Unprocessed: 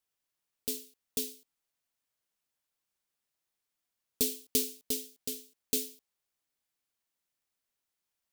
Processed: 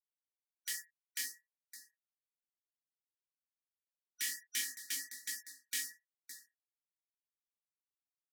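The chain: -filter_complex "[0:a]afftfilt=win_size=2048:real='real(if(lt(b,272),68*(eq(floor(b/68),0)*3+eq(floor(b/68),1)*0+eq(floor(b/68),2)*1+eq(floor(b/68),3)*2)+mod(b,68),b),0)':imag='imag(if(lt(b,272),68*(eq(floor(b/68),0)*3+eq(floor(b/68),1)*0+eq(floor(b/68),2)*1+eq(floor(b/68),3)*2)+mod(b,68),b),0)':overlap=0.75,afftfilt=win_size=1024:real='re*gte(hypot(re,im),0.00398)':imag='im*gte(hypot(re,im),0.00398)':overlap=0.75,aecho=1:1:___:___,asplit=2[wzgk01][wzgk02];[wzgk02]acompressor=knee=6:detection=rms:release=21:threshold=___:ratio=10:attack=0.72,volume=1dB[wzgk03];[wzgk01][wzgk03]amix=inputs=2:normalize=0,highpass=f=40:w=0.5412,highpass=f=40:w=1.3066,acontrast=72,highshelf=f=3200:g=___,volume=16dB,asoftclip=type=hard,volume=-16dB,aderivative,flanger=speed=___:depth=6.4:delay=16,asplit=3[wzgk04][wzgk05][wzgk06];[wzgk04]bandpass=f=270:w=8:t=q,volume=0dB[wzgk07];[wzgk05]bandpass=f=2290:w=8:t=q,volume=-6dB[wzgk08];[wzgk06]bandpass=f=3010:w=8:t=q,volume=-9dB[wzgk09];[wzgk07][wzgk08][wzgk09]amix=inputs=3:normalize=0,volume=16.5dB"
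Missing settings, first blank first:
563, 0.0891, -44dB, 7, 1.1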